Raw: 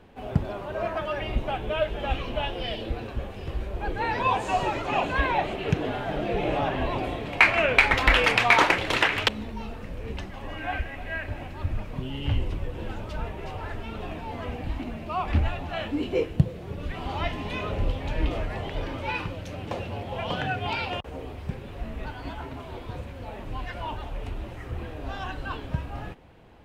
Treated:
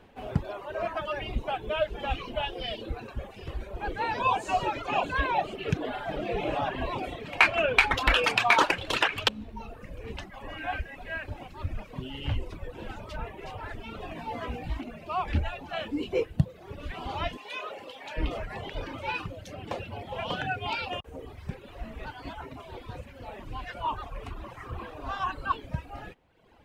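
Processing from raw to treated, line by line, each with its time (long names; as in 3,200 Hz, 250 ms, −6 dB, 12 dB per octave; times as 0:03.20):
0:14.14–0:14.81: double-tracking delay 17 ms −2 dB
0:17.37–0:18.17: Bessel high-pass filter 580 Hz
0:23.84–0:25.52: parametric band 1,100 Hz +12 dB 0.45 octaves
whole clip: low-shelf EQ 380 Hz −4 dB; reverb reduction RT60 1.1 s; dynamic equaliser 2,000 Hz, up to −8 dB, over −46 dBFS, Q 5.6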